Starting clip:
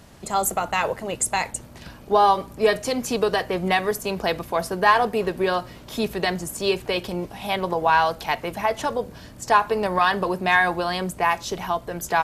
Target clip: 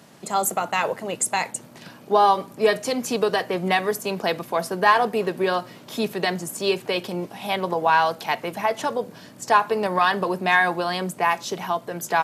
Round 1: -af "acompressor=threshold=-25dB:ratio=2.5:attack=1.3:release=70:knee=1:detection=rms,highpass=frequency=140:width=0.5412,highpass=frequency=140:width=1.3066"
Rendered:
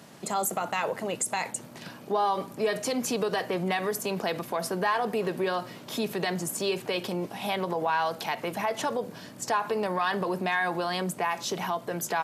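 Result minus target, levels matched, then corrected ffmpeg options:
downward compressor: peak gain reduction +11 dB
-af "highpass=frequency=140:width=0.5412,highpass=frequency=140:width=1.3066"

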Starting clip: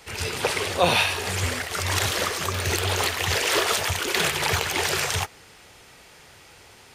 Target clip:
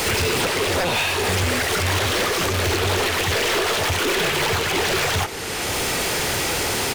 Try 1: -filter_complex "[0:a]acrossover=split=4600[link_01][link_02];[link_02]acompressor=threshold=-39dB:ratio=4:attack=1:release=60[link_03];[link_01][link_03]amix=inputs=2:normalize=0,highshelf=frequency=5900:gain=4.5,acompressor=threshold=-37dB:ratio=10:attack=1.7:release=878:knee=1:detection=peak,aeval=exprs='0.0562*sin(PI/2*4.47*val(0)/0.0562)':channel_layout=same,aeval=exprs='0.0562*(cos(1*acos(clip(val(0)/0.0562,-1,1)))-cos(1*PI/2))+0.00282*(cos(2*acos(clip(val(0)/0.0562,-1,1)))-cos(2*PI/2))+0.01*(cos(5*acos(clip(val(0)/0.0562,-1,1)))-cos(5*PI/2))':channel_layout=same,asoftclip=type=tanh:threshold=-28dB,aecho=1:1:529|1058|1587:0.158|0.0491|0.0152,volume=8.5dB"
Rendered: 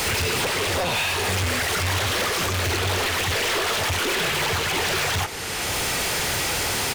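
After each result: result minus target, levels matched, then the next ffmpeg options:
soft clipping: distortion +13 dB; 250 Hz band −2.5 dB
-filter_complex "[0:a]acrossover=split=4600[link_01][link_02];[link_02]acompressor=threshold=-39dB:ratio=4:attack=1:release=60[link_03];[link_01][link_03]amix=inputs=2:normalize=0,highshelf=frequency=5900:gain=4.5,acompressor=threshold=-37dB:ratio=10:attack=1.7:release=878:knee=1:detection=peak,aeval=exprs='0.0562*sin(PI/2*4.47*val(0)/0.0562)':channel_layout=same,aeval=exprs='0.0562*(cos(1*acos(clip(val(0)/0.0562,-1,1)))-cos(1*PI/2))+0.00282*(cos(2*acos(clip(val(0)/0.0562,-1,1)))-cos(2*PI/2))+0.01*(cos(5*acos(clip(val(0)/0.0562,-1,1)))-cos(5*PI/2))':channel_layout=same,asoftclip=type=tanh:threshold=-19dB,aecho=1:1:529|1058|1587:0.158|0.0491|0.0152,volume=8.5dB"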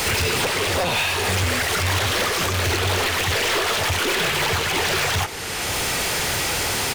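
250 Hz band −2.5 dB
-filter_complex "[0:a]acrossover=split=4600[link_01][link_02];[link_02]acompressor=threshold=-39dB:ratio=4:attack=1:release=60[link_03];[link_01][link_03]amix=inputs=2:normalize=0,highshelf=frequency=5900:gain=4.5,acompressor=threshold=-37dB:ratio=10:attack=1.7:release=878:knee=1:detection=peak,equalizer=frequency=350:width_type=o:width=1.5:gain=5,aeval=exprs='0.0562*sin(PI/2*4.47*val(0)/0.0562)':channel_layout=same,aeval=exprs='0.0562*(cos(1*acos(clip(val(0)/0.0562,-1,1)))-cos(1*PI/2))+0.00282*(cos(2*acos(clip(val(0)/0.0562,-1,1)))-cos(2*PI/2))+0.01*(cos(5*acos(clip(val(0)/0.0562,-1,1)))-cos(5*PI/2))':channel_layout=same,asoftclip=type=tanh:threshold=-19dB,aecho=1:1:529|1058|1587:0.158|0.0491|0.0152,volume=8.5dB"

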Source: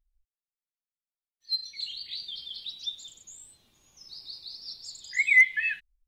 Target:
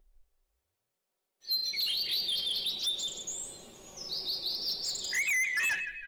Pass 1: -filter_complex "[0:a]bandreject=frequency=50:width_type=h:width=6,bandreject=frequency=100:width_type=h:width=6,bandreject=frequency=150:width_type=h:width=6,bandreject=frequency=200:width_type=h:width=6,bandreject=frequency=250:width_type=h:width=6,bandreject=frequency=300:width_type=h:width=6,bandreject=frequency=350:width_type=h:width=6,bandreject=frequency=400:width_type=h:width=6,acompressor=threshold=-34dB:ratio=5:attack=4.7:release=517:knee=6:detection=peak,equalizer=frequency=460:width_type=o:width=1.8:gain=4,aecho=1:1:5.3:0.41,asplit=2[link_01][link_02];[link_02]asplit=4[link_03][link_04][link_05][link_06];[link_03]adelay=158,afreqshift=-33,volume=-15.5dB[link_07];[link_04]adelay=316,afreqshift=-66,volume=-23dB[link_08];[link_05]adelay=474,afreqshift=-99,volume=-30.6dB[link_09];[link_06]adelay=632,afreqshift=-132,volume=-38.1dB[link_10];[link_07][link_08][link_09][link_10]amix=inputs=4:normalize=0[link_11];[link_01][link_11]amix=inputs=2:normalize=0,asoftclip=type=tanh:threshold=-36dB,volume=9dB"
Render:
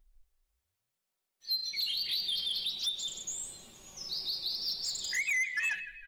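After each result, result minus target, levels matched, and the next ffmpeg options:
500 Hz band −7.0 dB; downward compressor: peak gain reduction +6 dB
-filter_complex "[0:a]bandreject=frequency=50:width_type=h:width=6,bandreject=frequency=100:width_type=h:width=6,bandreject=frequency=150:width_type=h:width=6,bandreject=frequency=200:width_type=h:width=6,bandreject=frequency=250:width_type=h:width=6,bandreject=frequency=300:width_type=h:width=6,bandreject=frequency=350:width_type=h:width=6,bandreject=frequency=400:width_type=h:width=6,acompressor=threshold=-34dB:ratio=5:attack=4.7:release=517:knee=6:detection=peak,equalizer=frequency=460:width_type=o:width=1.8:gain=13,aecho=1:1:5.3:0.41,asplit=2[link_01][link_02];[link_02]asplit=4[link_03][link_04][link_05][link_06];[link_03]adelay=158,afreqshift=-33,volume=-15.5dB[link_07];[link_04]adelay=316,afreqshift=-66,volume=-23dB[link_08];[link_05]adelay=474,afreqshift=-99,volume=-30.6dB[link_09];[link_06]adelay=632,afreqshift=-132,volume=-38.1dB[link_10];[link_07][link_08][link_09][link_10]amix=inputs=4:normalize=0[link_11];[link_01][link_11]amix=inputs=2:normalize=0,asoftclip=type=tanh:threshold=-36dB,volume=9dB"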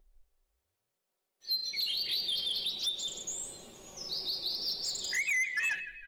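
downward compressor: peak gain reduction +6 dB
-filter_complex "[0:a]bandreject=frequency=50:width_type=h:width=6,bandreject=frequency=100:width_type=h:width=6,bandreject=frequency=150:width_type=h:width=6,bandreject=frequency=200:width_type=h:width=6,bandreject=frequency=250:width_type=h:width=6,bandreject=frequency=300:width_type=h:width=6,bandreject=frequency=350:width_type=h:width=6,bandreject=frequency=400:width_type=h:width=6,acompressor=threshold=-26.5dB:ratio=5:attack=4.7:release=517:knee=6:detection=peak,equalizer=frequency=460:width_type=o:width=1.8:gain=13,aecho=1:1:5.3:0.41,asplit=2[link_01][link_02];[link_02]asplit=4[link_03][link_04][link_05][link_06];[link_03]adelay=158,afreqshift=-33,volume=-15.5dB[link_07];[link_04]adelay=316,afreqshift=-66,volume=-23dB[link_08];[link_05]adelay=474,afreqshift=-99,volume=-30.6dB[link_09];[link_06]adelay=632,afreqshift=-132,volume=-38.1dB[link_10];[link_07][link_08][link_09][link_10]amix=inputs=4:normalize=0[link_11];[link_01][link_11]amix=inputs=2:normalize=0,asoftclip=type=tanh:threshold=-36dB,volume=9dB"

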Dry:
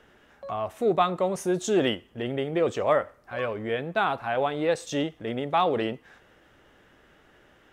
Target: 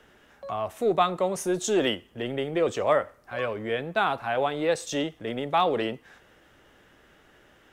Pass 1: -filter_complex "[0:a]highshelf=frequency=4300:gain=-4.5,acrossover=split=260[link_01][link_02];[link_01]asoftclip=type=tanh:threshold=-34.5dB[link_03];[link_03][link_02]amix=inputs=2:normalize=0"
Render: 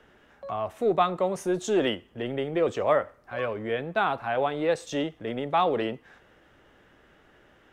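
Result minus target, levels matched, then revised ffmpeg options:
8,000 Hz band −6.5 dB
-filter_complex "[0:a]highshelf=frequency=4300:gain=5,acrossover=split=260[link_01][link_02];[link_01]asoftclip=type=tanh:threshold=-34.5dB[link_03];[link_03][link_02]amix=inputs=2:normalize=0"

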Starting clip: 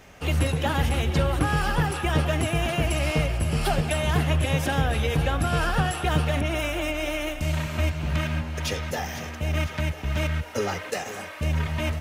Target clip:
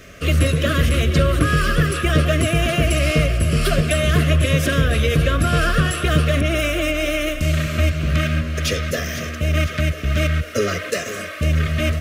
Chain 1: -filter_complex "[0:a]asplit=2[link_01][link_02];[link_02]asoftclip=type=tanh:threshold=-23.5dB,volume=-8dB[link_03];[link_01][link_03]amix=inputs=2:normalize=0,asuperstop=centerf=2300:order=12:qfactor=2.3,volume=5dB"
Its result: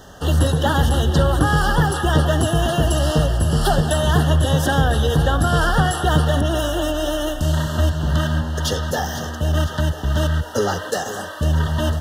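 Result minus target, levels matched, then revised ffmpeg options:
1,000 Hz band +5.5 dB
-filter_complex "[0:a]asplit=2[link_01][link_02];[link_02]asoftclip=type=tanh:threshold=-23.5dB,volume=-8dB[link_03];[link_01][link_03]amix=inputs=2:normalize=0,asuperstop=centerf=860:order=12:qfactor=2.3,volume=5dB"

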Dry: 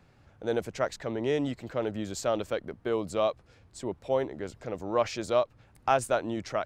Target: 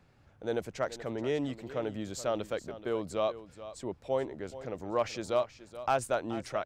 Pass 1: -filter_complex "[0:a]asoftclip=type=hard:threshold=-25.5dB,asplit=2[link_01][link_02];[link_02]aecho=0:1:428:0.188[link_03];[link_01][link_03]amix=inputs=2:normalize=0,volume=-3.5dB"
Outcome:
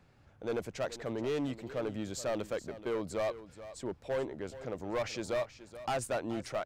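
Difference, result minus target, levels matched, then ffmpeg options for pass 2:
hard clipping: distortion +19 dB
-filter_complex "[0:a]asoftclip=type=hard:threshold=-14.5dB,asplit=2[link_01][link_02];[link_02]aecho=0:1:428:0.188[link_03];[link_01][link_03]amix=inputs=2:normalize=0,volume=-3.5dB"

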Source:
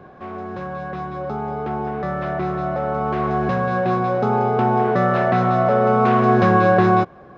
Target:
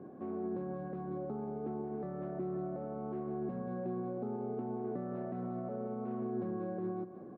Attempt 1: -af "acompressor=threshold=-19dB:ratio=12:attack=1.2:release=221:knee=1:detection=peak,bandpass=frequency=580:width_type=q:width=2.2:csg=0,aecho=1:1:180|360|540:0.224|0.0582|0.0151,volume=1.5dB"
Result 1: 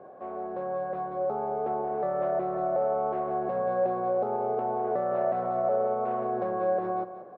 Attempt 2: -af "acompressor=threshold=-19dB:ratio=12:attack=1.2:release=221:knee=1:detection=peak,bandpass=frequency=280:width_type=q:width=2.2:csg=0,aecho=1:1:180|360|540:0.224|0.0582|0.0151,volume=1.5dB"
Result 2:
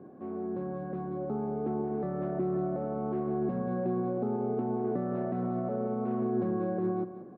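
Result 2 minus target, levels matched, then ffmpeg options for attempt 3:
downward compressor: peak gain reduction −7.5 dB
-af "acompressor=threshold=-27dB:ratio=12:attack=1.2:release=221:knee=1:detection=peak,bandpass=frequency=280:width_type=q:width=2.2:csg=0,aecho=1:1:180|360|540:0.224|0.0582|0.0151,volume=1.5dB"

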